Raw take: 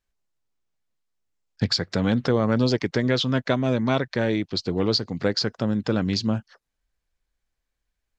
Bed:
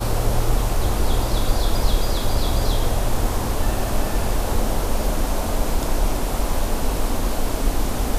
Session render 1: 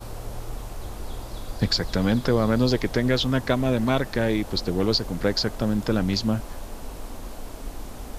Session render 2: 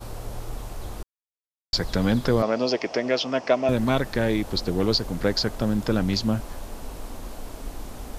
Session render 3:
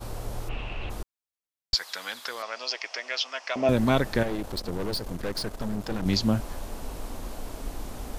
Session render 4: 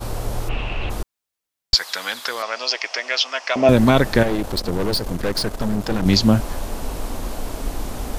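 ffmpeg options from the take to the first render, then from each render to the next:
-filter_complex "[1:a]volume=0.188[s0];[0:a][s0]amix=inputs=2:normalize=0"
-filter_complex "[0:a]asettb=1/sr,asplit=3[s0][s1][s2];[s0]atrim=end=2.424[s3];[s1]atrim=start=2.42:end=3.69,asetpts=PTS-STARTPTS,afade=t=in:d=0.004:c=qsin,afade=t=out:st=1.266:d=0.004:c=qsin,highpass=330,equalizer=f=650:t=q:w=4:g=8,equalizer=f=1600:t=q:w=4:g=-4,equalizer=f=2600:t=q:w=4:g=6,equalizer=f=3800:t=q:w=4:g=-9,equalizer=f=5400:t=q:w=4:g=7,lowpass=f=6000:w=0.5412,lowpass=f=6000:w=1.3066[s4];[s2]atrim=start=3.686[s5];[s3][s4]acrossfade=d=0.004:c1=hsin:c2=qsin[s6];[s6][s5]acrossfade=d=0.004:c1=qsin:c2=hsin,asplit=3[s7][s8][s9];[s7]atrim=end=1.03,asetpts=PTS-STARTPTS,afade=t=out:st=1.026:d=0.004:c=hsin[s10];[s8]atrim=start=1.03:end=1.73,asetpts=PTS-STARTPTS,volume=0[s11];[s9]atrim=start=1.73,asetpts=PTS-STARTPTS,afade=t=in:d=0.004:c=hsin[s12];[s10][s11][s12]concat=n=3:v=0:a=1"
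-filter_complex "[0:a]asplit=3[s0][s1][s2];[s0]afade=t=out:st=0.48:d=0.02[s3];[s1]lowpass=f=2700:t=q:w=9.3,afade=t=in:st=0.48:d=0.02,afade=t=out:st=0.89:d=0.02[s4];[s2]afade=t=in:st=0.89:d=0.02[s5];[s3][s4][s5]amix=inputs=3:normalize=0,asettb=1/sr,asplit=3[s6][s7][s8];[s6]atrim=end=1.744[s9];[s7]atrim=start=1.74:end=3.56,asetpts=PTS-STARTPTS,afade=t=in:d=0.004:c=qsin,afade=t=out:st=1.816:d=0.004:c=qsin,highpass=1400[s10];[s8]atrim=start=3.556[s11];[s9][s10]acrossfade=d=0.004:c1=hsin:c2=qsin[s12];[s12][s11]acrossfade=d=0.004:c1=qsin:c2=hsin,asettb=1/sr,asplit=3[s13][s14][s15];[s13]atrim=end=4.234[s16];[s14]atrim=start=4.23:end=6.06,asetpts=PTS-STARTPTS,afade=t=in:d=0.004:c=qsin,afade=t=out:st=1.826:d=0.004:c=qsin,aeval=exprs='(tanh(22.4*val(0)+0.75)-tanh(0.75))/22.4':c=same[s17];[s15]atrim=start=6.056[s18];[s16][s17]acrossfade=d=0.004:c1=hsin:c2=qsin[s19];[s19][s18]acrossfade=d=0.004:c1=qsin:c2=hsin"
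-af "volume=2.82,alimiter=limit=0.891:level=0:latency=1"

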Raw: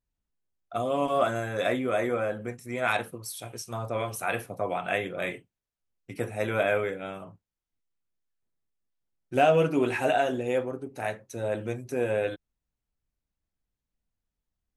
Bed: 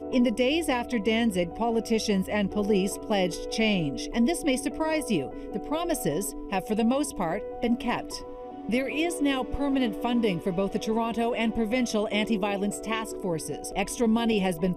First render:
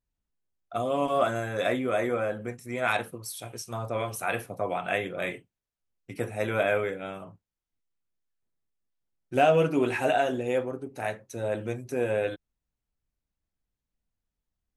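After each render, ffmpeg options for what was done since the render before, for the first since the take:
-af anull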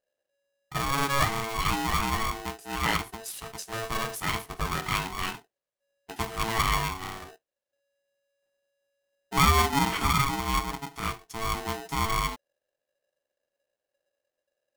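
-af "aeval=exprs='val(0)*sgn(sin(2*PI*560*n/s))':c=same"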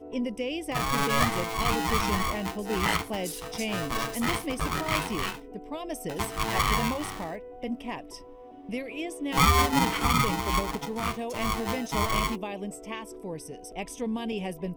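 -filter_complex "[1:a]volume=0.422[s0];[0:a][s0]amix=inputs=2:normalize=0"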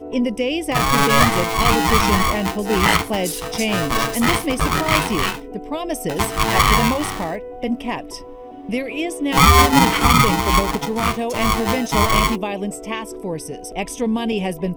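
-af "volume=3.35,alimiter=limit=0.794:level=0:latency=1"

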